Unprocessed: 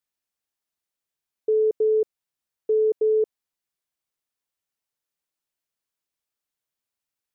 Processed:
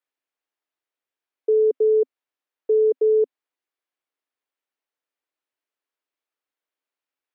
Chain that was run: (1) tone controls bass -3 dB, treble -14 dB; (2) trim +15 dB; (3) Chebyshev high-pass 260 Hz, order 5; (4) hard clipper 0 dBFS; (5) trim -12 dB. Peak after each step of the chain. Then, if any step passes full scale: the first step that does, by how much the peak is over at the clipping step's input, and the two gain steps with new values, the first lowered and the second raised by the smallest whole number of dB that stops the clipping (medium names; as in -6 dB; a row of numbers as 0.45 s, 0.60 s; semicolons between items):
-16.5 dBFS, -1.5 dBFS, -1.5 dBFS, -1.5 dBFS, -13.5 dBFS; nothing clips